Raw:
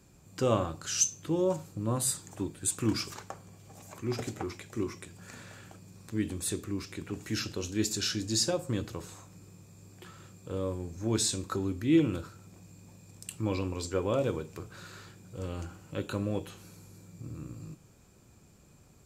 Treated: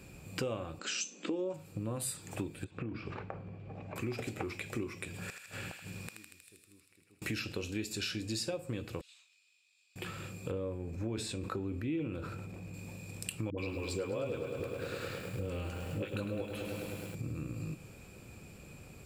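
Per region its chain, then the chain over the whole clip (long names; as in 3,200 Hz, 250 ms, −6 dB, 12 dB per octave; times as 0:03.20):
0:00.79–0:01.54: linear-phase brick-wall band-pass 190–8,200 Hz + low-shelf EQ 290 Hz +8.5 dB
0:02.64–0:03.96: downward compressor 12 to 1, threshold −37 dBFS + head-to-tape spacing loss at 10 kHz 44 dB
0:05.06–0:07.22: gate with flip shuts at −37 dBFS, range −36 dB + feedback echo with a high-pass in the loop 79 ms, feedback 81%, high-pass 1,200 Hz, level −4.5 dB
0:09.01–0:09.96: four-pole ladder band-pass 4,000 Hz, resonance 45% + one half of a high-frequency compander decoder only
0:10.51–0:12.74: high-shelf EQ 2,900 Hz −10 dB + level that may fall only so fast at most 62 dB per second
0:13.50–0:17.15: all-pass dispersion highs, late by 78 ms, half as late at 450 Hz + feedback echo at a low word length 104 ms, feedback 80%, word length 9 bits, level −10 dB
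whole clip: thirty-one-band graphic EQ 500 Hz +4 dB, 1,000 Hz −3 dB, 2,500 Hz +10 dB, 6,300 Hz −9 dB; downward compressor 6 to 1, threshold −42 dBFS; level +7 dB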